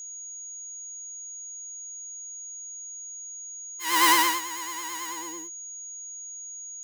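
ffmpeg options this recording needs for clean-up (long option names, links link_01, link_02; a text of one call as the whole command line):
ffmpeg -i in.wav -af "bandreject=frequency=6700:width=30" out.wav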